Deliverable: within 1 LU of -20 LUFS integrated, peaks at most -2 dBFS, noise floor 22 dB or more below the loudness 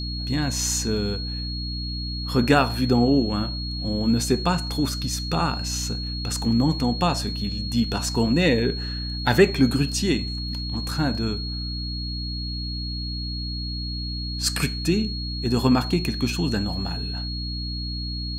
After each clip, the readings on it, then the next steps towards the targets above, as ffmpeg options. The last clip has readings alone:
hum 60 Hz; harmonics up to 300 Hz; hum level -28 dBFS; steady tone 4300 Hz; tone level -32 dBFS; loudness -24.5 LUFS; peak -4.0 dBFS; loudness target -20.0 LUFS
-> -af "bandreject=f=60:t=h:w=4,bandreject=f=120:t=h:w=4,bandreject=f=180:t=h:w=4,bandreject=f=240:t=h:w=4,bandreject=f=300:t=h:w=4"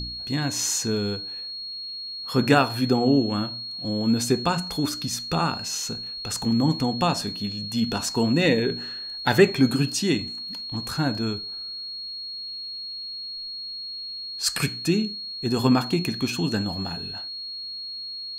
hum none; steady tone 4300 Hz; tone level -32 dBFS
-> -af "bandreject=f=4.3k:w=30"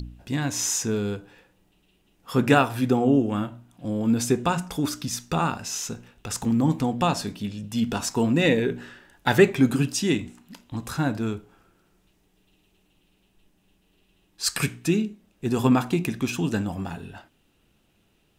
steady tone none; loudness -24.5 LUFS; peak -4.0 dBFS; loudness target -20.0 LUFS
-> -af "volume=4.5dB,alimiter=limit=-2dB:level=0:latency=1"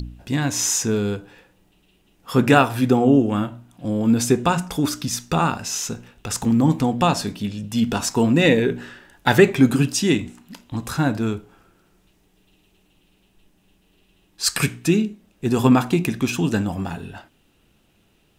loudness -20.5 LUFS; peak -2.0 dBFS; noise floor -61 dBFS

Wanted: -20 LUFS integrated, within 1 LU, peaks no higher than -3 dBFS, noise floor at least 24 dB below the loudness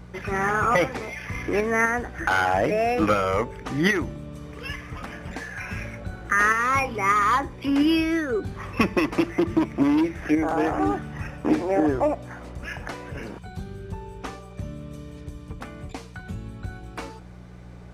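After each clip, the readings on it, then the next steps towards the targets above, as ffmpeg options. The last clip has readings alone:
hum 60 Hz; harmonics up to 180 Hz; hum level -41 dBFS; loudness -24.0 LUFS; peak -7.0 dBFS; loudness target -20.0 LUFS
-> -af "bandreject=f=60:t=h:w=4,bandreject=f=120:t=h:w=4,bandreject=f=180:t=h:w=4"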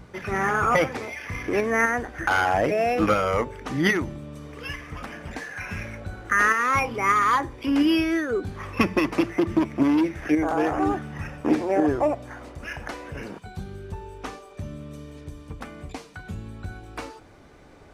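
hum none; loudness -23.5 LUFS; peak -7.5 dBFS; loudness target -20.0 LUFS
-> -af "volume=3.5dB"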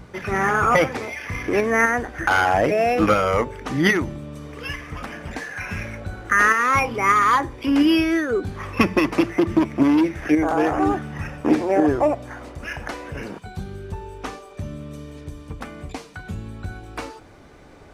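loudness -20.0 LUFS; peak -4.0 dBFS; noise floor -45 dBFS

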